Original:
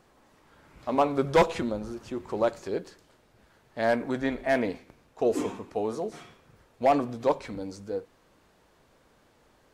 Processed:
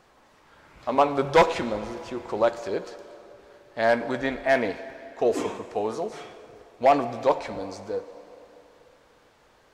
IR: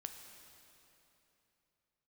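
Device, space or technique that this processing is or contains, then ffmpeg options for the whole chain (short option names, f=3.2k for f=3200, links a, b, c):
filtered reverb send: -filter_complex "[0:a]asplit=2[a][b];[b]highpass=400,lowpass=8k[c];[1:a]atrim=start_sample=2205[d];[c][d]afir=irnorm=-1:irlink=0,volume=2dB[e];[a][e]amix=inputs=2:normalize=0"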